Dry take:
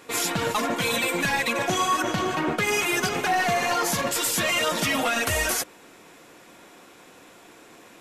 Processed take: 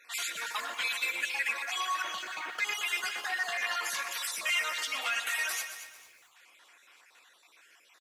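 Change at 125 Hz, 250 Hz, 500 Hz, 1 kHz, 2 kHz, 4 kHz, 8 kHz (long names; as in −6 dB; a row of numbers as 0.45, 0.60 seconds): below −35 dB, −30.5 dB, −21.0 dB, −11.5 dB, −5.0 dB, −6.0 dB, −9.5 dB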